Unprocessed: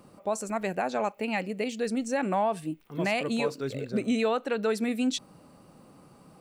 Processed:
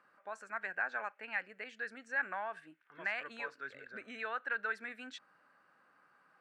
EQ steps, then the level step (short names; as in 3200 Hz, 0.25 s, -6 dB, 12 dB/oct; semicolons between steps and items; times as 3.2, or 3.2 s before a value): band-pass 1600 Hz, Q 7; +6.5 dB